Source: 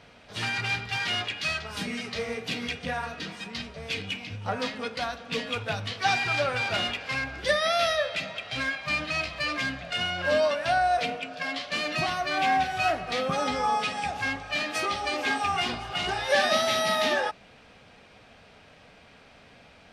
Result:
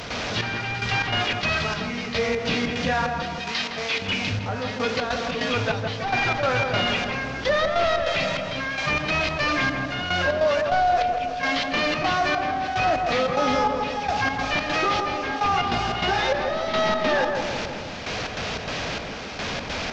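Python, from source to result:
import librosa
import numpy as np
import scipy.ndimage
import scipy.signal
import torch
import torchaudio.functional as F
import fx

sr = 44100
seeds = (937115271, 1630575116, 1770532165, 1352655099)

y = fx.delta_mod(x, sr, bps=32000, step_db=-37.5)
y = fx.highpass(y, sr, hz=750.0, slope=6, at=(3.41, 4.02))
y = 10.0 ** (-15.5 / 20.0) * np.tanh(y / 10.0 ** (-15.5 / 20.0))
y = fx.step_gate(y, sr, bpm=147, pattern='.xxx....xx.xx', floor_db=-12.0, edge_ms=4.5)
y = fx.echo_filtered(y, sr, ms=161, feedback_pct=48, hz=1200.0, wet_db=-7.0)
y = fx.env_flatten(y, sr, amount_pct=50)
y = y * 10.0 ** (4.0 / 20.0)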